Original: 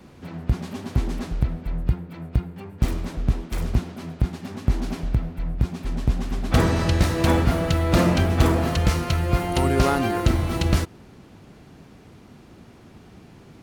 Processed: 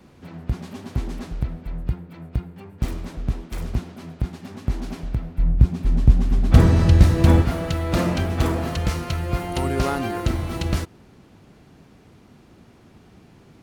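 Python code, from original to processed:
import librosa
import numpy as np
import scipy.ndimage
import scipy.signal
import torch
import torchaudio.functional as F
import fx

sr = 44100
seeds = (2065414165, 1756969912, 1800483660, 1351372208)

y = fx.low_shelf(x, sr, hz=260.0, db=12.0, at=(5.38, 7.42))
y = y * librosa.db_to_amplitude(-3.0)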